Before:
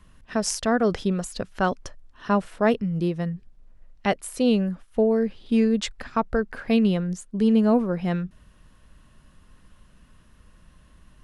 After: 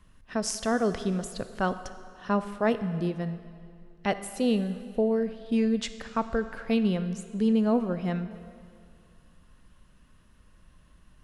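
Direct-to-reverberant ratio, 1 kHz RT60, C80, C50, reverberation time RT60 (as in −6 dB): 11.0 dB, 2.2 s, 13.0 dB, 12.0 dB, 2.3 s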